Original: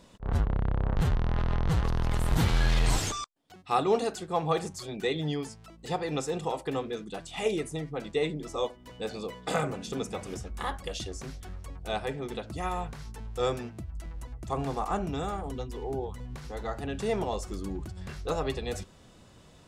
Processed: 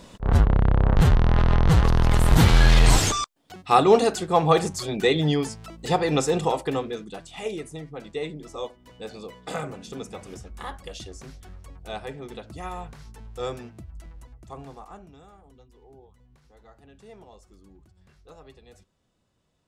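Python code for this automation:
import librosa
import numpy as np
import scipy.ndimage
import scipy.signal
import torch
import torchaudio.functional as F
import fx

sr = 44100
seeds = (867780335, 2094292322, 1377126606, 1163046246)

y = fx.gain(x, sr, db=fx.line((6.41, 9.0), (7.4, -2.5), (13.98, -2.5), (14.72, -10.5), (15.2, -18.0)))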